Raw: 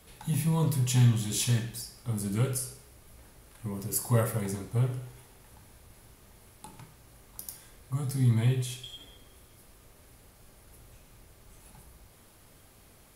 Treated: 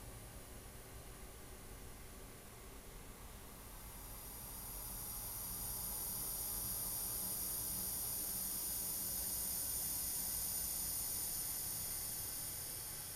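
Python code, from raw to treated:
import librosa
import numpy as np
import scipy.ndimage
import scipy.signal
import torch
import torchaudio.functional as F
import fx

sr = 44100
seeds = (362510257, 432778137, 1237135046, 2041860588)

y = fx.doppler_pass(x, sr, speed_mps=11, closest_m=9.3, pass_at_s=5.63)
y = fx.paulstretch(y, sr, seeds[0], factor=34.0, window_s=0.25, from_s=7.06)
y = y * librosa.db_to_amplitude(8.0)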